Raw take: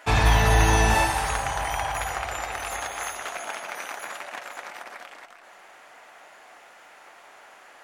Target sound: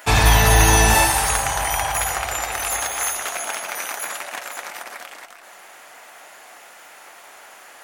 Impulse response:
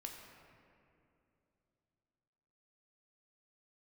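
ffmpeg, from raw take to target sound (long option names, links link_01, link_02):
-af "aemphasis=mode=production:type=50kf,volume=4dB"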